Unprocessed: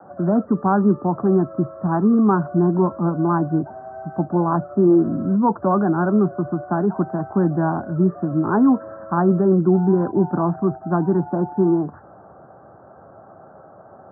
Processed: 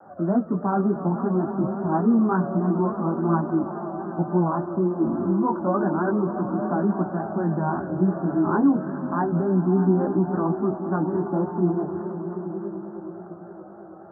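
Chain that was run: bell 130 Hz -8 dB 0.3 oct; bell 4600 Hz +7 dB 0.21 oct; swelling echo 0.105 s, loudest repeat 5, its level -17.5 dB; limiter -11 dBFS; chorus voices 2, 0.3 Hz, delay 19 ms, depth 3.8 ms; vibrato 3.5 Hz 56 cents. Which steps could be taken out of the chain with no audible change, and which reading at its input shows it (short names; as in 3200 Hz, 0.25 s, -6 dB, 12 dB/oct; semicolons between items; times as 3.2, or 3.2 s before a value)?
bell 4600 Hz: input band ends at 1500 Hz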